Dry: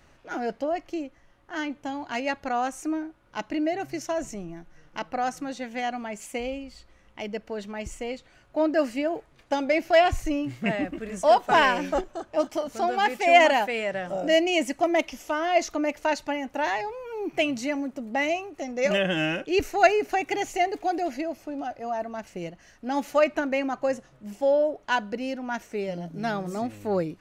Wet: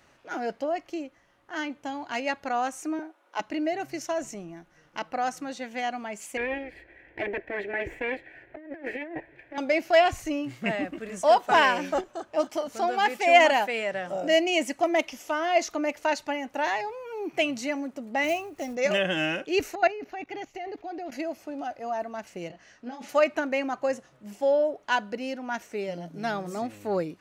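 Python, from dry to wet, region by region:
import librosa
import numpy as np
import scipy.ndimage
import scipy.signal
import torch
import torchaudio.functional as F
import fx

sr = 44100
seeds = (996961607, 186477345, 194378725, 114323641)

y = fx.chain(x, sr, fx.highpass(hz=320.0, slope=24),
    fx.peak_eq(hz=760.0, db=5.0, octaves=0.73),
    fx.notch(hz=4700.0, q=15.0), at=(2.99, 3.4))
y = fx.chain(y, sr, fx.lower_of_two(delay_ms=1.2),
    fx.curve_eq(hz=(140.0, 220.0, 330.0, 710.0, 1200.0, 1900.0, 3600.0, 5600.0), db=(0, -10, 15, 0, -13, 13, -12, -24)),
    fx.over_compress(threshold_db=-33.0, ratio=-1.0), at=(6.37, 9.58))
y = fx.chain(y, sr, fx.block_float(bits=5),
    fx.low_shelf(hz=150.0, db=11.0), at=(18.24, 18.77))
y = fx.chain(y, sr, fx.low_shelf(hz=130.0, db=9.0),
    fx.level_steps(step_db=17),
    fx.moving_average(points=5), at=(19.75, 21.12))
y = fx.chain(y, sr, fx.lowpass(hz=6400.0, slope=12),
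    fx.over_compress(threshold_db=-30.0, ratio=-0.5),
    fx.detune_double(cents=36), at=(22.48, 23.09))
y = fx.highpass(y, sr, hz=120.0, slope=6)
y = fx.low_shelf(y, sr, hz=340.0, db=-3.5)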